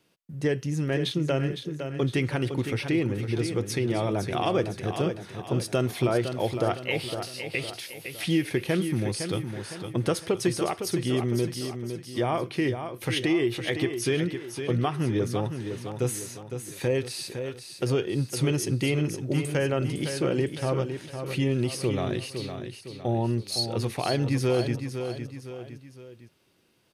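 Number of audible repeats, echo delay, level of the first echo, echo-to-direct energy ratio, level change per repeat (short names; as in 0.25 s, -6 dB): 3, 0.509 s, -8.0 dB, -7.0 dB, -7.0 dB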